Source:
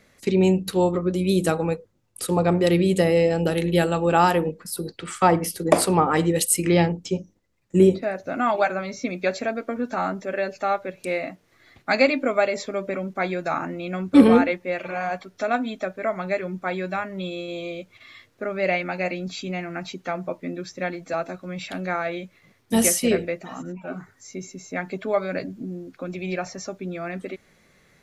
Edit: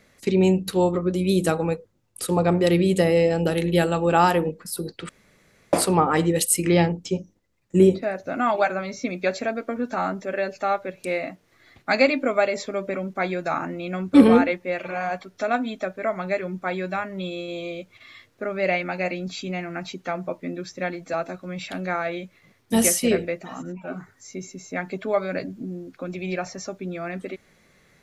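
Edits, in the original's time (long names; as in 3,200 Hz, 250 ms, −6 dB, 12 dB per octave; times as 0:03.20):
0:05.09–0:05.73: fill with room tone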